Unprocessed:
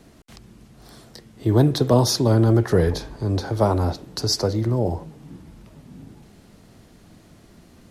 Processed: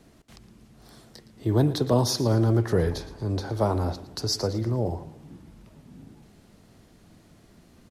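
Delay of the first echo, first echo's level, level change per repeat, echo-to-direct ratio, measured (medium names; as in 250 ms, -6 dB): 114 ms, -16.0 dB, -8.0 dB, -15.5 dB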